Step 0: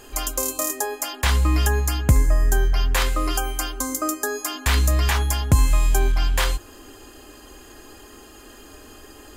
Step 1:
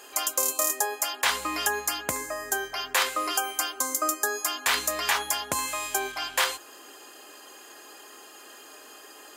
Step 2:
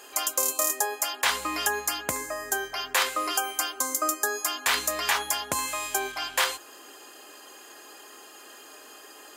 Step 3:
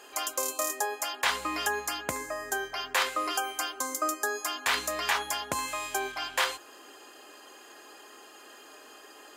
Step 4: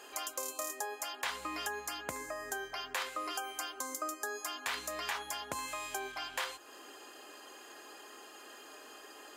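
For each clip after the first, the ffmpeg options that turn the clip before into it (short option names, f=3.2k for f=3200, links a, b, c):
-af "highpass=540"
-af anull
-af "highshelf=f=6.6k:g=-8,volume=-1.5dB"
-af "acompressor=threshold=-39dB:ratio=2,volume=-1.5dB"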